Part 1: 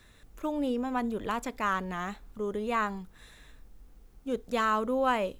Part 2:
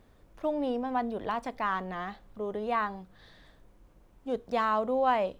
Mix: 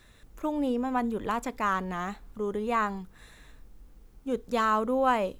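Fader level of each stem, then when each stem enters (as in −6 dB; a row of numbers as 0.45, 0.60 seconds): +0.5, −10.0 decibels; 0.00, 0.00 seconds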